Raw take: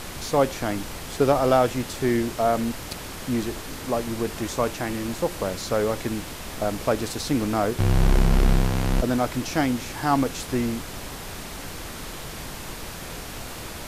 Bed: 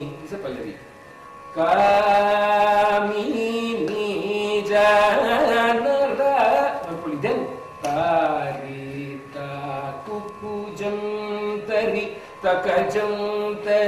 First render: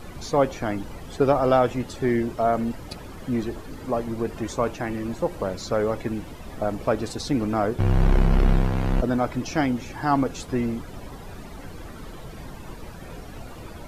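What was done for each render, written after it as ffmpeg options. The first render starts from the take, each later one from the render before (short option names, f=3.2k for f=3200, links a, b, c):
-af "afftdn=nr=14:nf=-36"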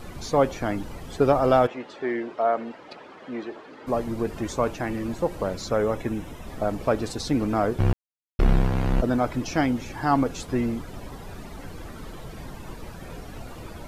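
-filter_complex "[0:a]asplit=3[a][b][c];[a]afade=t=out:st=1.66:d=0.02[d];[b]highpass=400,lowpass=3.1k,afade=t=in:st=1.66:d=0.02,afade=t=out:st=3.86:d=0.02[e];[c]afade=t=in:st=3.86:d=0.02[f];[d][e][f]amix=inputs=3:normalize=0,asettb=1/sr,asplit=3[g][h][i];[g]atrim=end=5.684[j];[h]atrim=start=5.68:end=6.47,asetpts=PTS-STARTPTS,afade=t=in:d=0.004:c=qsin,afade=t=out:st=0.786:d=0.004:c=qsin,bandreject=f=4.5k:w=5.1[k];[i]atrim=start=6.466[l];[j][k]acrossfade=d=0.004:c1=hsin:c2=qsin[m];[m][l]acrossfade=d=0.004:c1=qsin:c2=hsin,asplit=3[n][o][p];[n]atrim=end=7.93,asetpts=PTS-STARTPTS,afade=t=out:st=7.926:d=0.004:c=hsin[q];[o]atrim=start=7.93:end=8.39,asetpts=PTS-STARTPTS,volume=0[r];[p]atrim=start=8.39,asetpts=PTS-STARTPTS,afade=t=in:d=0.004:c=hsin[s];[q][r][s]concat=n=3:v=0:a=1"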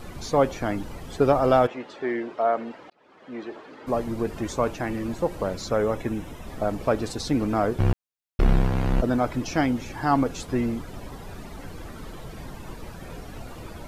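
-filter_complex "[0:a]asplit=2[a][b];[a]atrim=end=2.9,asetpts=PTS-STARTPTS,afade=t=out:st=2.896:d=0.004:c=hsin[c];[b]atrim=start=2.9,asetpts=PTS-STARTPTS,afade=t=in:d=0.65[d];[c][d]concat=n=2:v=0:a=1"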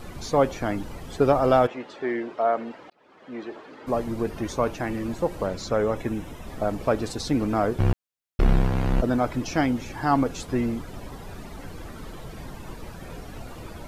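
-filter_complex "[0:a]asettb=1/sr,asplit=3[a][b][c];[a]atrim=end=4.294[d];[b]atrim=start=4.29:end=4.73,asetpts=PTS-STARTPTS,afade=t=in:d=0.004:c=qsin,afade=t=out:st=0.436:d=0.004:c=qsin,bandreject=f=7.5k:w=6[e];[c]atrim=start=4.726[f];[d][e]acrossfade=d=0.004:c1=hsin:c2=qsin[g];[g][f]acrossfade=d=0.004:c1=qsin:c2=hsin,asettb=1/sr,asplit=3[h][i][j];[h]atrim=end=5.464[k];[i]atrim=start=5.46:end=5.96,asetpts=PTS-STARTPTS,afade=t=in:d=0.004:c=qsin,afade=t=out:st=0.496:d=0.004:c=qsin,equalizer=f=12k:t=o:w=0.77:g=-5.5[l];[j]atrim=start=5.956[m];[k][l]acrossfade=d=0.004:c1=hsin:c2=qsin[n];[n][m]acrossfade=d=0.004:c1=qsin:c2=hsin"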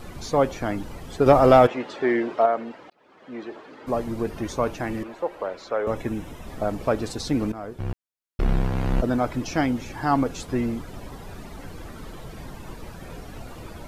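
-filter_complex "[0:a]asettb=1/sr,asplit=3[a][b][c];[a]atrim=end=1.264[d];[b]atrim=start=1.26:end=2.46,asetpts=PTS-STARTPTS,afade=t=in:d=0.004:c=qsin,afade=t=out:st=1.196:d=0.004:c=qsin,acontrast=43[e];[c]atrim=start=2.456[f];[d][e]acrossfade=d=0.004:c1=hsin:c2=qsin[g];[g][f]acrossfade=d=0.004:c1=qsin:c2=hsin,asettb=1/sr,asplit=3[h][i][j];[h]atrim=end=5.034[k];[i]atrim=start=5.03:end=5.87,asetpts=PTS-STARTPTS,afade=t=in:d=0.004:c=qsin,afade=t=out:st=0.836:d=0.004:c=qsin,acrossover=split=360 3400:gain=0.0891 1 0.2[l][m][n];[l][m][n]amix=inputs=3:normalize=0[o];[j]atrim=start=5.866[p];[k][o]acrossfade=d=0.004:c1=hsin:c2=qsin[q];[q][p]acrossfade=d=0.004:c1=qsin:c2=hsin,asplit=2[r][s];[r]atrim=end=7.52,asetpts=PTS-STARTPTS,afade=t=out:st=7.516:d=0.004:c=hsin:silence=0.188365[t];[s]atrim=start=7.52,asetpts=PTS-STARTPTS,afade=t=in:d=1.45:silence=0.188365[u];[t][u]concat=n=2:v=0:a=1"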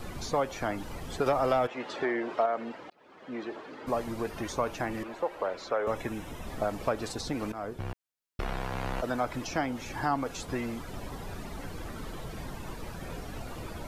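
-filter_complex "[0:a]acrossover=split=570|1300[a][b][c];[a]acompressor=threshold=-35dB:ratio=4[d];[b]acompressor=threshold=-29dB:ratio=4[e];[c]acompressor=threshold=-38dB:ratio=4[f];[d][e][f]amix=inputs=3:normalize=0"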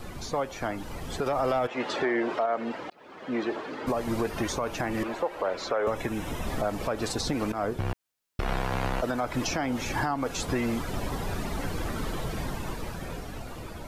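-af "dynaudnorm=f=240:g=11:m=8dB,alimiter=limit=-18dB:level=0:latency=1:release=213"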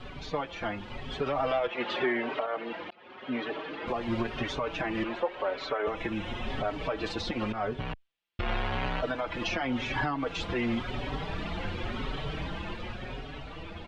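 -filter_complex "[0:a]lowpass=f=3.1k:t=q:w=2.3,asplit=2[a][b];[b]adelay=4.9,afreqshift=0.91[c];[a][c]amix=inputs=2:normalize=1"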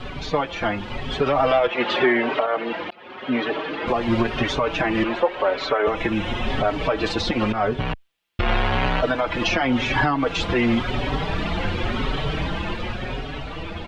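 -af "volume=10dB"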